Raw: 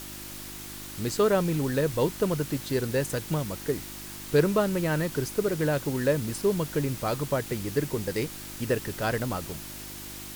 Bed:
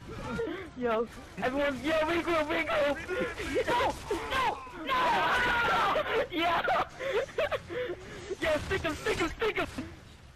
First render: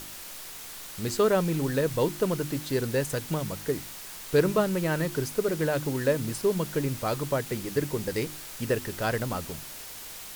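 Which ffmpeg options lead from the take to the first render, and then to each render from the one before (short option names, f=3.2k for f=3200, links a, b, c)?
-af "bandreject=f=50:t=h:w=4,bandreject=f=100:t=h:w=4,bandreject=f=150:t=h:w=4,bandreject=f=200:t=h:w=4,bandreject=f=250:t=h:w=4,bandreject=f=300:t=h:w=4,bandreject=f=350:t=h:w=4"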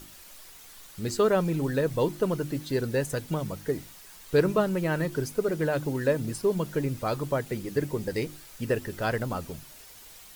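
-af "afftdn=nr=9:nf=-42"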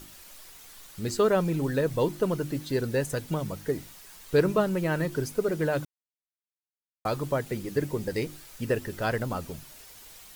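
-filter_complex "[0:a]asplit=3[a][b][c];[a]atrim=end=5.85,asetpts=PTS-STARTPTS,afade=t=out:st=5.846:d=0.004:c=hsin[d];[b]atrim=start=5.85:end=7.05,asetpts=PTS-STARTPTS,volume=0[e];[c]atrim=start=7.05,asetpts=PTS-STARTPTS,afade=t=in:d=0.004:c=hsin[f];[d][e][f]concat=n=3:v=0:a=1"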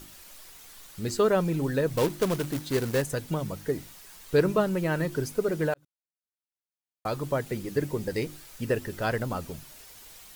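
-filter_complex "[0:a]asettb=1/sr,asplit=3[a][b][c];[a]atrim=end=1.974[d];[b]atrim=start=1.97:end=3.02,asetpts=PTS-STARTPTS,afade=t=in:d=0.004:c=qsin,afade=t=out:st=1.046:d=0.004:c=qsin,acrusher=bits=2:mode=log:mix=0:aa=0.000001[e];[c]atrim=start=3.016[f];[d][e]acrossfade=d=0.004:c1=hsin:c2=qsin[g];[g][f]acrossfade=d=0.004:c1=qsin:c2=hsin,asplit=2[h][i];[h]atrim=end=5.74,asetpts=PTS-STARTPTS,afade=t=out:st=5.736:d=0.004:c=hsin[j];[i]atrim=start=5.74,asetpts=PTS-STARTPTS,afade=t=in:d=1.65[k];[j][k]concat=n=2:v=0:a=1"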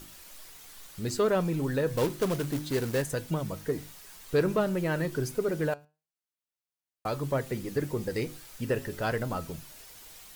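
-filter_complex "[0:a]flanger=delay=6:depth=2.3:regen=86:speed=0.31:shape=sinusoidal,asplit=2[a][b];[b]asoftclip=type=tanh:threshold=-29.5dB,volume=-4.5dB[c];[a][c]amix=inputs=2:normalize=0"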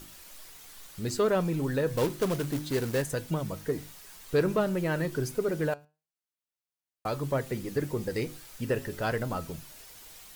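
-af anull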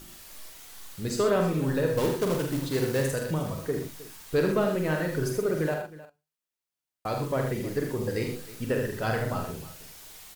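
-filter_complex "[0:a]asplit=2[a][b];[b]adelay=45,volume=-6dB[c];[a][c]amix=inputs=2:normalize=0,aecho=1:1:74|82|119|313:0.376|0.355|0.112|0.133"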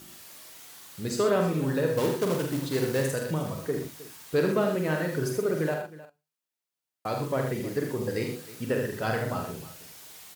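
-af "highpass=100"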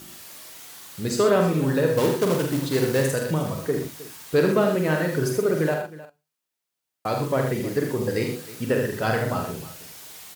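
-af "volume=5dB"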